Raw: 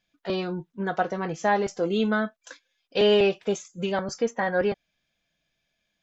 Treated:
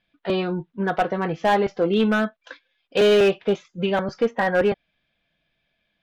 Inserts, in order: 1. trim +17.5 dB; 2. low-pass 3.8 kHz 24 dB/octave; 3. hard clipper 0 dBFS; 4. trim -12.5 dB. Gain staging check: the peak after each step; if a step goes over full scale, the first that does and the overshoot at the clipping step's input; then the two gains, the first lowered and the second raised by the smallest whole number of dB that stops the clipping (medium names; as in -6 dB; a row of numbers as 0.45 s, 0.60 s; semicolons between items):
+8.0 dBFS, +8.0 dBFS, 0.0 dBFS, -12.5 dBFS; step 1, 8.0 dB; step 1 +9.5 dB, step 4 -4.5 dB